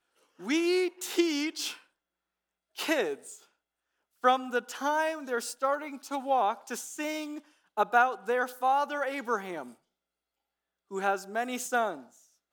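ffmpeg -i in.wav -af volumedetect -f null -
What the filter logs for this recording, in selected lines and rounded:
mean_volume: -31.6 dB
max_volume: -9.6 dB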